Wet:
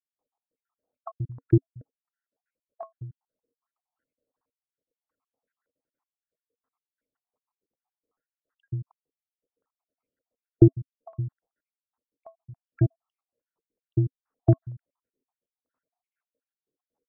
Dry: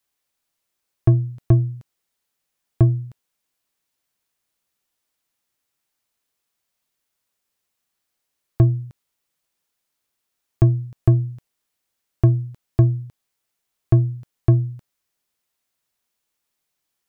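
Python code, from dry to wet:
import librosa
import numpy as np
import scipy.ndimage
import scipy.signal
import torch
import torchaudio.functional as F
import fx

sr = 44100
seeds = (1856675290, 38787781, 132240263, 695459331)

y = fx.spec_dropout(x, sr, seeds[0], share_pct=75)
y = fx.small_body(y, sr, hz=(270.0, 470.0), ring_ms=45, db=11)
y = fx.filter_held_lowpass(y, sr, hz=5.3, low_hz=380.0, high_hz=1500.0)
y = y * 10.0 ** (-4.5 / 20.0)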